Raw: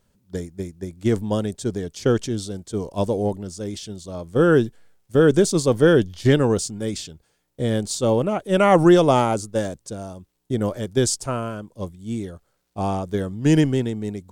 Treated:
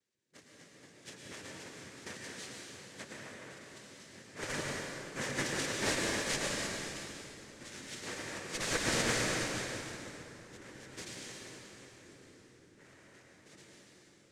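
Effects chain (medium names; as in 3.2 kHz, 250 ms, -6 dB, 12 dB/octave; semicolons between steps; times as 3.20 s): fade out at the end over 4.59 s; spectral gate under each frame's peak -10 dB weak; elliptic low-pass 5.5 kHz; treble shelf 2.8 kHz +5 dB; noise-vocoded speech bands 3; in parallel at -6.5 dB: Schmitt trigger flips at -16 dBFS; on the sum: high-order bell 990 Hz -8.5 dB 1.3 oct; on a send: bucket-brigade echo 331 ms, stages 1024, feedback 83%, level -13.5 dB; on the sum: plate-style reverb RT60 4.2 s, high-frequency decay 0.75×, pre-delay 90 ms, DRR -4 dB; upward expansion 1.5:1, over -36 dBFS; trim -7.5 dB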